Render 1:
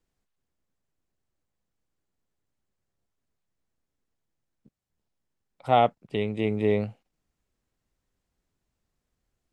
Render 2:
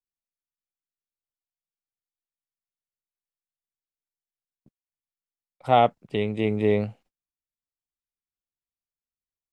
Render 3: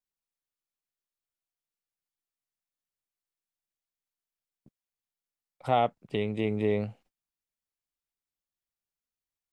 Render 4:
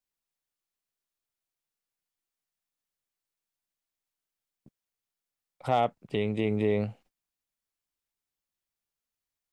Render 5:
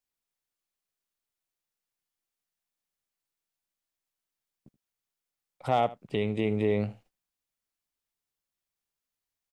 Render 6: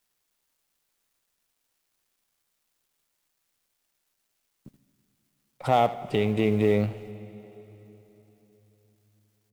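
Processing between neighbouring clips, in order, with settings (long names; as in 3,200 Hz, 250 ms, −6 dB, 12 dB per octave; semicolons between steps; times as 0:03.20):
noise gate −56 dBFS, range −28 dB; level +2 dB
downward compressor 1.5 to 1, threshold −32 dBFS, peak gain reduction 7 dB
in parallel at +2.5 dB: brickwall limiter −20 dBFS, peak gain reduction 7 dB; on the sum: hard clipping −10 dBFS, distortion −37 dB; level −5 dB
single-tap delay 78 ms −18.5 dB
mu-law and A-law mismatch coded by mu; on a send at −15.5 dB: convolution reverb RT60 3.7 s, pre-delay 36 ms; on the sum: level +3.5 dB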